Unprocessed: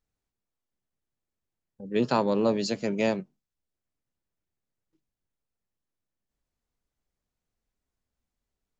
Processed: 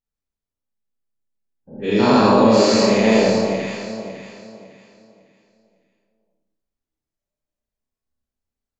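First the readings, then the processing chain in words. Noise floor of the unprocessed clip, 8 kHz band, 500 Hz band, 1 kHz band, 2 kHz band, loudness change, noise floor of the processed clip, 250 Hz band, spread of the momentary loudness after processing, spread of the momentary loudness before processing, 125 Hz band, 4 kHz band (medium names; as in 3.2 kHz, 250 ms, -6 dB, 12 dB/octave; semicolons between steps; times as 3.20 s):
under -85 dBFS, no reading, +12.5 dB, +13.0 dB, +13.5 dB, +11.5 dB, under -85 dBFS, +12.5 dB, 17 LU, 8 LU, +12.0 dB, +14.5 dB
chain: every event in the spectrogram widened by 240 ms; spectral noise reduction 15 dB; echo whose repeats swap between lows and highs 277 ms, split 920 Hz, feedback 55%, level -3 dB; Schroeder reverb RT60 0.86 s, combs from 28 ms, DRR -5.5 dB; trim -2 dB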